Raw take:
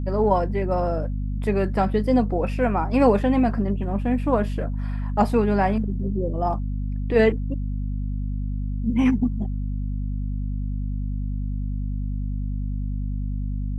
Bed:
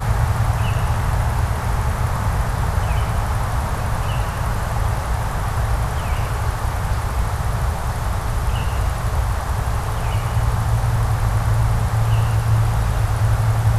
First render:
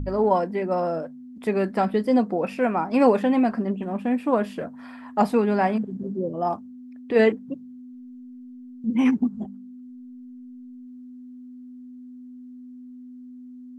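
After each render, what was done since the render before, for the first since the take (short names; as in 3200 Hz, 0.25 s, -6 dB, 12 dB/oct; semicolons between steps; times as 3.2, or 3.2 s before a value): de-hum 50 Hz, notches 4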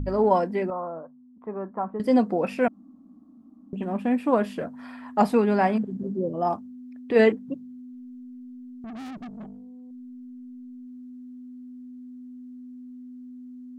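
0.7–2 ladder low-pass 1200 Hz, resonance 65%; 2.68–3.73 room tone; 8.84–9.91 tube stage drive 36 dB, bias 0.35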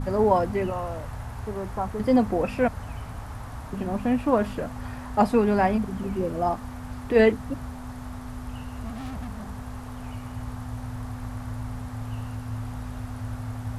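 add bed -16.5 dB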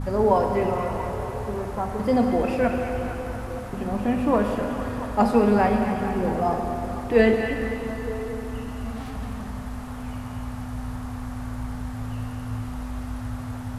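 delay with a stepping band-pass 0.228 s, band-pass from 2500 Hz, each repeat -0.7 oct, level -6 dB; plate-style reverb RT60 3.6 s, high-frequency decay 0.95×, DRR 3 dB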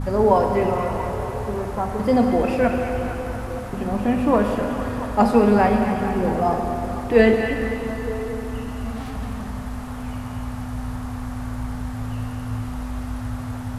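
gain +3 dB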